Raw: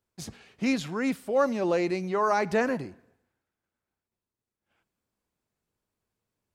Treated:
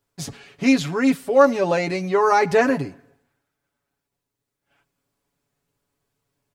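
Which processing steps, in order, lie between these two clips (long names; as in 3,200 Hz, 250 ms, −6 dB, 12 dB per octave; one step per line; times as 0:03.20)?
comb filter 7.1 ms, depth 77%
level +6 dB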